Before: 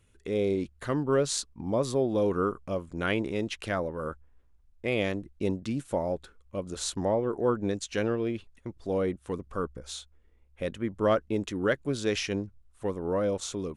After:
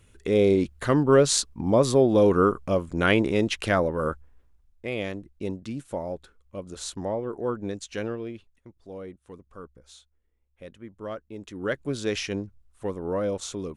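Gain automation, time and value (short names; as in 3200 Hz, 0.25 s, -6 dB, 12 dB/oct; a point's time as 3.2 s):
4.09 s +7.5 dB
4.89 s -2.5 dB
8.05 s -2.5 dB
8.75 s -11 dB
11.33 s -11 dB
11.79 s +0.5 dB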